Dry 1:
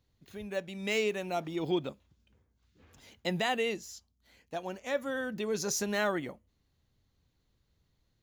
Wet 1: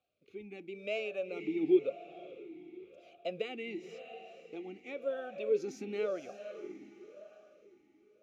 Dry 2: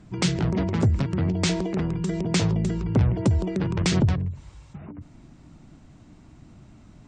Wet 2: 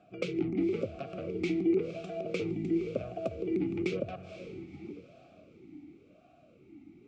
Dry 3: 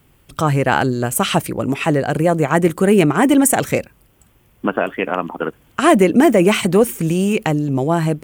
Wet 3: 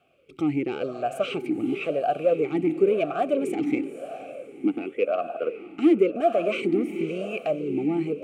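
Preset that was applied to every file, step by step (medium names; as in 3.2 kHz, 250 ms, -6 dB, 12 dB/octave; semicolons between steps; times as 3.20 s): in parallel at -2 dB: compression, threshold -29 dBFS; on the sum: saturation -8.5 dBFS; word length cut 12-bit, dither none; Butterworth band-stop 970 Hz, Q 2; on a send: echo that smears into a reverb 504 ms, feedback 43%, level -11 dB; on the sum: talking filter a-u 0.95 Hz; trim +3.5 dB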